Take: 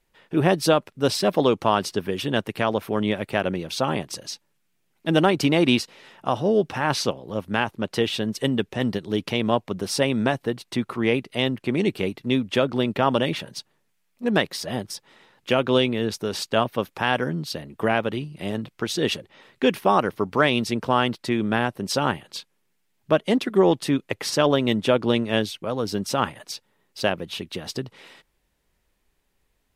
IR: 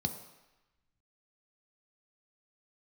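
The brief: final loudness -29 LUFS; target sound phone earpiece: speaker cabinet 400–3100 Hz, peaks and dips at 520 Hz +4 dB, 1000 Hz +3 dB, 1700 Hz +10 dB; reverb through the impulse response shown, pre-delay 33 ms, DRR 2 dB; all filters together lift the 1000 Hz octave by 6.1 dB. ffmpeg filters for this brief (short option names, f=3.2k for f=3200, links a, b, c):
-filter_complex "[0:a]equalizer=f=1k:t=o:g=5,asplit=2[a][b];[1:a]atrim=start_sample=2205,adelay=33[c];[b][c]afir=irnorm=-1:irlink=0,volume=-4.5dB[d];[a][d]amix=inputs=2:normalize=0,highpass=400,equalizer=f=520:t=q:w=4:g=4,equalizer=f=1k:t=q:w=4:g=3,equalizer=f=1.7k:t=q:w=4:g=10,lowpass=f=3.1k:w=0.5412,lowpass=f=3.1k:w=1.3066,volume=-10dB"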